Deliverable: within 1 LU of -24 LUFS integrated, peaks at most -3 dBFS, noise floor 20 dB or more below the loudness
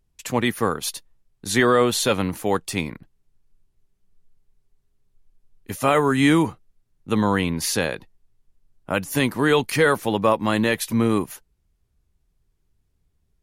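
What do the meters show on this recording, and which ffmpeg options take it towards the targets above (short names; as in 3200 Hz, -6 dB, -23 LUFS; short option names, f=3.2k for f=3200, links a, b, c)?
loudness -21.5 LUFS; peak -6.0 dBFS; loudness target -24.0 LUFS
-> -af "volume=-2.5dB"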